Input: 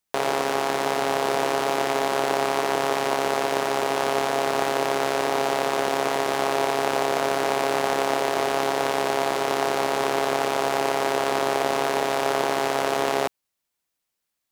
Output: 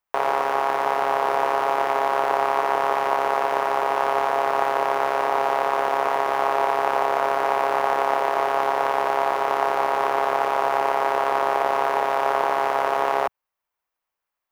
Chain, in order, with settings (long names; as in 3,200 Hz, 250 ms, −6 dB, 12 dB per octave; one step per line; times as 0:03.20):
graphic EQ with 10 bands 125 Hz −7 dB, 250 Hz −9 dB, 1,000 Hz +7 dB, 4,000 Hz −7 dB, 8,000 Hz −10 dB, 16,000 Hz −5 dB